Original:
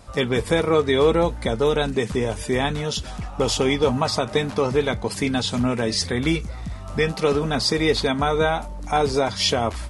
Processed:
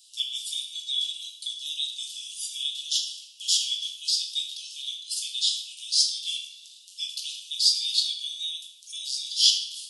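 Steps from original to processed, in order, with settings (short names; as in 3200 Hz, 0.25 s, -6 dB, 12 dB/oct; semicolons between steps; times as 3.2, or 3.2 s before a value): steep high-pass 2900 Hz 96 dB/oct; shoebox room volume 410 m³, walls mixed, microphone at 1.2 m; gain +1.5 dB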